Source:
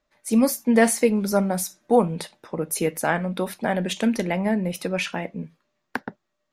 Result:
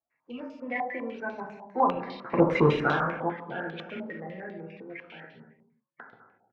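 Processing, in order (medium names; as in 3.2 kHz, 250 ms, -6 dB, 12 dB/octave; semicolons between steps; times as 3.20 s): coarse spectral quantiser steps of 30 dB; Doppler pass-by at 2.49 s, 27 m/s, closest 1.4 m; high-pass 53 Hz; in parallel at -7 dB: sine folder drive 12 dB, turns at -14 dBFS; on the sum: distance through air 170 m; gated-style reverb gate 390 ms falling, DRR -1 dB; step-sequenced low-pass 10 Hz 860–3700 Hz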